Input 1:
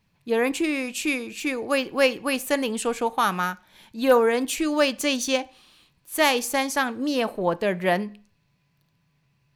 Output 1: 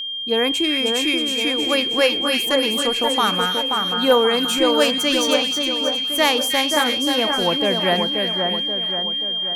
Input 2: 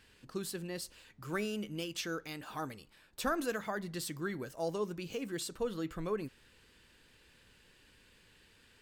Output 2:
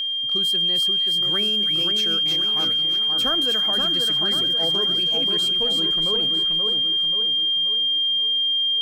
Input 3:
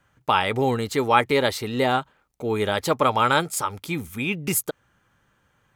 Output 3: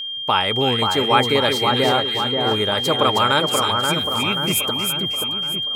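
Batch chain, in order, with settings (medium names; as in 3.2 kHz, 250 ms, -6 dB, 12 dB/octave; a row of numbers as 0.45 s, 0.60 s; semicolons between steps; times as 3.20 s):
whistle 3.2 kHz -27 dBFS; two-band feedback delay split 1.8 kHz, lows 531 ms, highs 316 ms, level -4 dB; normalise loudness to -18 LUFS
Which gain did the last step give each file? +2.0 dB, +4.5 dB, +1.0 dB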